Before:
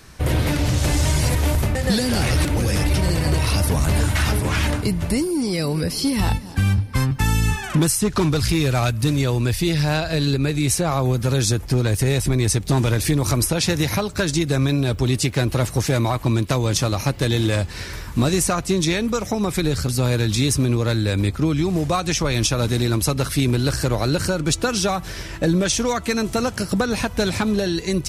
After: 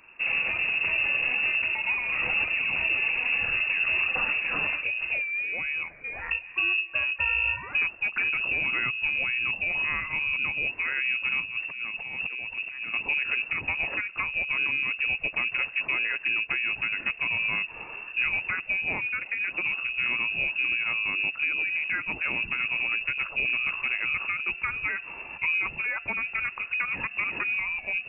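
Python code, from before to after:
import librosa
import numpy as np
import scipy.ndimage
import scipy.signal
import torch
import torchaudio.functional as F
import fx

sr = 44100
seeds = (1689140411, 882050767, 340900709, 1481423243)

y = fx.highpass(x, sr, hz=390.0, slope=12, at=(5.83, 6.31))
y = fx.over_compress(y, sr, threshold_db=-23.0, ratio=-0.5, at=(11.4, 12.94))
y = fx.freq_invert(y, sr, carrier_hz=2700)
y = y * librosa.db_to_amplitude(-8.5)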